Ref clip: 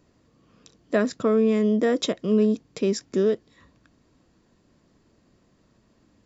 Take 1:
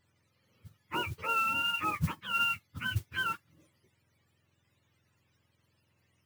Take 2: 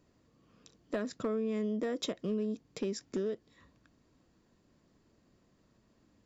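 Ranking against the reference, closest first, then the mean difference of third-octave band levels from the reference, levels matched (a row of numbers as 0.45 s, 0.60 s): 2, 1; 2.5 dB, 13.5 dB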